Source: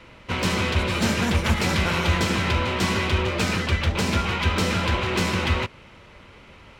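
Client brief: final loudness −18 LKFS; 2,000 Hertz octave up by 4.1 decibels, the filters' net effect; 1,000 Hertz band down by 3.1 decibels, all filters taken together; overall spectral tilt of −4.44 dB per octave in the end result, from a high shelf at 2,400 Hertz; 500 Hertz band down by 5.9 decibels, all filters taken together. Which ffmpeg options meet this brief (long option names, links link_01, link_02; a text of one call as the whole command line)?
ffmpeg -i in.wav -af "equalizer=frequency=500:width_type=o:gain=-7,equalizer=frequency=1000:width_type=o:gain=-4.5,equalizer=frequency=2000:width_type=o:gain=8,highshelf=frequency=2400:gain=-3,volume=4dB" out.wav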